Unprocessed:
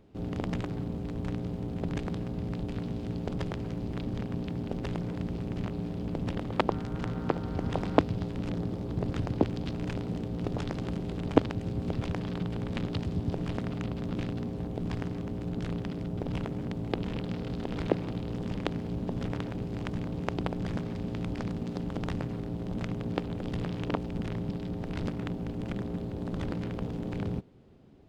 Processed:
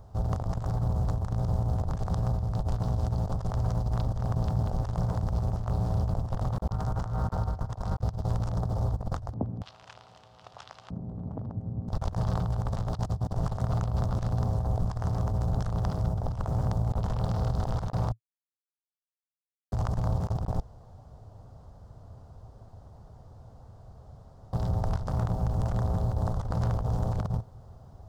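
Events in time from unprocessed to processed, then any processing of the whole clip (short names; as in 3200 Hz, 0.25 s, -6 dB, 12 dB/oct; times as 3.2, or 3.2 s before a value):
9.32–11.88 LFO band-pass square 0.73 Hz -> 0.12 Hz 230–2700 Hz
18.12–19.72 mute
20.6–24.53 room tone
whole clip: EQ curve 110 Hz 0 dB, 170 Hz -12 dB, 320 Hz -20 dB, 690 Hz +4 dB, 1200 Hz +4 dB, 2400 Hz -16 dB, 5600 Hz +4 dB; negative-ratio compressor -39 dBFS, ratio -0.5; low shelf 410 Hz +9 dB; gain +3.5 dB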